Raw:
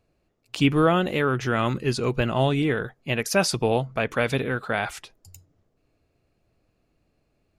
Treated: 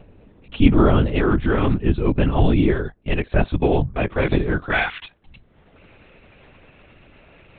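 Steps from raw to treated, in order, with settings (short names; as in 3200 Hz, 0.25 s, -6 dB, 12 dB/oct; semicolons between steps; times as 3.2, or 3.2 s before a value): bell 150 Hz +10.5 dB 2.6 oct, from 4.71 s 2300 Hz; upward compressor, threshold -31 dBFS; LPC vocoder at 8 kHz whisper; gain -1 dB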